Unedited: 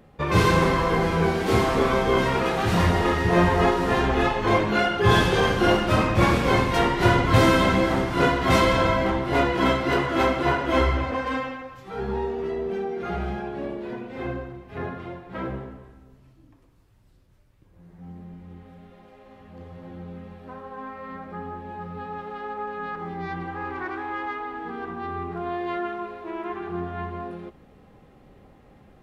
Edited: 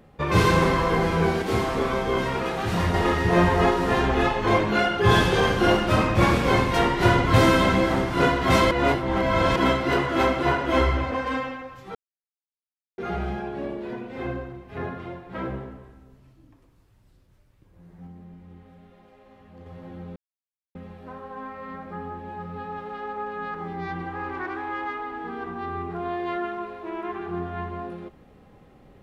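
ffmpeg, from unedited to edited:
-filter_complex "[0:a]asplit=10[a][b][c][d][e][f][g][h][i][j];[a]atrim=end=1.422[k];[b]atrim=start=1.418:end=2.942,asetpts=PTS-STARTPTS,volume=-3.5dB[l];[c]atrim=start=2.938:end=8.712[m];[d]atrim=start=8.708:end=9.562,asetpts=PTS-STARTPTS,areverse[n];[e]atrim=start=9.558:end=11.95,asetpts=PTS-STARTPTS,afade=t=out:st=2.388:d=0.004:c=hsin[o];[f]atrim=start=11.95:end=12.98,asetpts=PTS-STARTPTS,volume=0[p];[g]atrim=start=12.98:end=18.072,asetpts=PTS-STARTPTS,afade=t=in:d=0.004:c=hsin[q];[h]atrim=start=18.068:end=19.662,asetpts=PTS-STARTPTS,volume=-3.5dB[r];[i]atrim=start=19.658:end=20.16,asetpts=PTS-STARTPTS,afade=t=out:st=0.498:d=0.004:c=hsin,apad=pad_dur=0.59[s];[j]atrim=start=20.16,asetpts=PTS-STARTPTS,afade=t=in:d=0.004:c=hsin[t];[k][l]acrossfade=d=0.004:c1=hsin:c2=hsin[u];[u][m]acrossfade=d=0.004:c1=hsin:c2=hsin[v];[v][n]acrossfade=d=0.004:c1=hsin:c2=hsin[w];[o][p][q]concat=n=3:v=0:a=1[x];[w][x]acrossfade=d=0.004:c1=hsin:c2=hsin[y];[y][r]acrossfade=d=0.004:c1=hsin:c2=hsin[z];[s][t]concat=n=2:v=0:a=1[aa];[z][aa]acrossfade=d=0.004:c1=hsin:c2=hsin"

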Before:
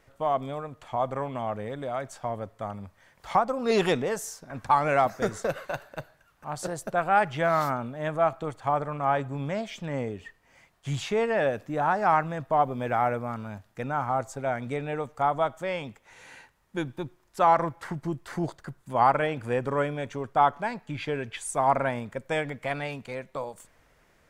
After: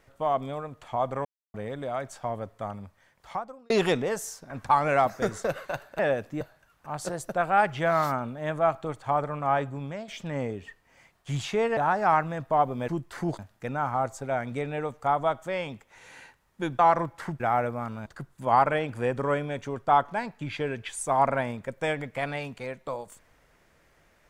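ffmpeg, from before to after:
-filter_complex "[0:a]asplit=13[a][b][c][d][e][f][g][h][i][j][k][l][m];[a]atrim=end=1.25,asetpts=PTS-STARTPTS,afade=t=out:st=1.246:d=0.004:c=hsin[n];[b]atrim=start=1.25:end=1.54,asetpts=PTS-STARTPTS,volume=0[o];[c]atrim=start=1.54:end=3.7,asetpts=PTS-STARTPTS,afade=t=in:d=0.004:c=hsin,afade=t=out:st=1.14:d=1.02[p];[d]atrim=start=3.7:end=5.992,asetpts=PTS-STARTPTS,afade=t=in:d=0.004:c=hsin[q];[e]atrim=start=11.348:end=11.772[r];[f]atrim=start=5.988:end=9.66,asetpts=PTS-STARTPTS,afade=t=out:st=3.202:d=0.47:silence=0.334965[s];[g]atrim=start=9.66:end=11.352,asetpts=PTS-STARTPTS,afade=t=in:d=0.004:c=hsin:silence=0.334965[t];[h]atrim=start=11.768:end=12.882[u];[i]atrim=start=18.028:end=18.542[v];[j]atrim=start=13.538:end=16.942[w];[k]atrim=start=17.418:end=18.032[x];[l]atrim=start=12.878:end=13.542[y];[m]atrim=start=18.538[z];[n][o][p][q]concat=n=4:v=0:a=1[aa];[aa][r]acrossfade=d=0.004:c1=hsin:c2=hsin[ab];[s][t]concat=n=2:v=0:a=1[ac];[ab][ac]acrossfade=d=0.004:c1=hsin:c2=hsin[ad];[ad][u]acrossfade=d=0.004:c1=hsin:c2=hsin[ae];[ae][v]acrossfade=d=0.004:c1=hsin:c2=hsin[af];[af][w]acrossfade=d=0.004:c1=hsin:c2=hsin[ag];[ag][x]acrossfade=d=0.004:c1=hsin:c2=hsin[ah];[ah][y]acrossfade=d=0.004:c1=hsin:c2=hsin[ai];[ai][z]acrossfade=d=0.004:c1=hsin:c2=hsin"

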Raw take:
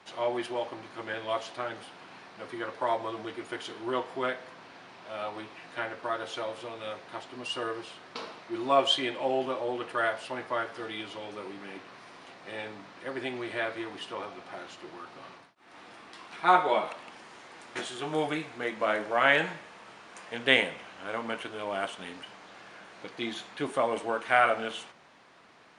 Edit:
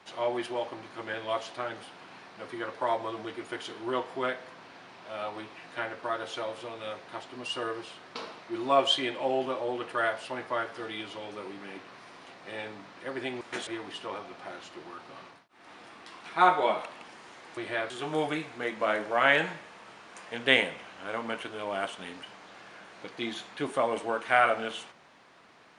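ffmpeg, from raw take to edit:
-filter_complex "[0:a]asplit=5[a][b][c][d][e];[a]atrim=end=13.412[f];[b]atrim=start=17.638:end=17.902[g];[c]atrim=start=13.738:end=17.642[h];[d]atrim=start=13.408:end=13.742[i];[e]atrim=start=17.898[j];[f][g]acrossfade=d=0.004:c1=hsin:c2=hsin[k];[k][h]acrossfade=d=0.004:c1=hsin:c2=hsin[l];[l][i]acrossfade=d=0.004:c1=hsin:c2=hsin[m];[m][j]acrossfade=d=0.004:c1=hsin:c2=hsin"

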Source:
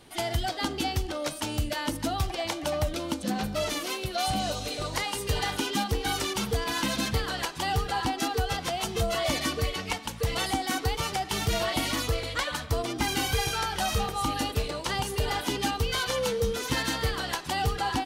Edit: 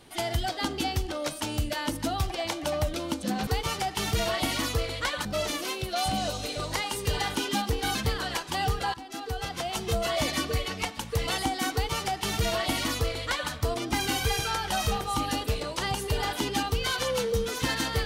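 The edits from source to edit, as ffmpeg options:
-filter_complex "[0:a]asplit=5[a][b][c][d][e];[a]atrim=end=3.472[f];[b]atrim=start=10.808:end=12.592[g];[c]atrim=start=3.468:end=6.172[h];[d]atrim=start=7.028:end=8.02,asetpts=PTS-STARTPTS,afade=t=out:st=0.988:d=0.004:c=hsin:silence=0.11885[i];[e]atrim=start=8.02,asetpts=PTS-STARTPTS,afade=t=in:d=1.21:c=qsin:silence=0.11885[j];[f][g]acrossfade=d=0.004:c1=hsin:c2=hsin[k];[k][h]acrossfade=d=0.004:c1=hsin:c2=hsin[l];[i][j]concat=n=2:v=0:a=1[m];[l][m]acrossfade=d=0.004:c1=hsin:c2=hsin"

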